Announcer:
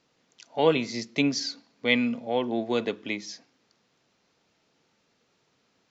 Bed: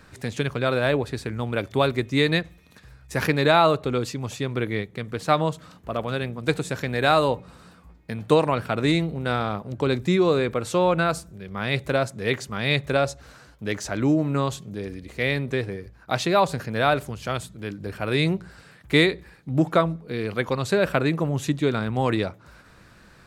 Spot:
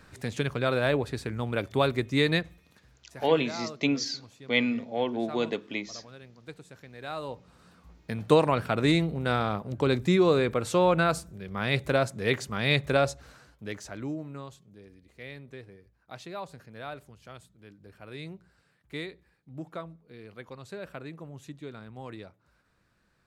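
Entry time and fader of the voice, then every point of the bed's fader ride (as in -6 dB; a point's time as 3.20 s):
2.65 s, -2.0 dB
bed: 2.53 s -3.5 dB
3.23 s -21 dB
6.95 s -21 dB
8.00 s -2 dB
13.07 s -2 dB
14.54 s -19 dB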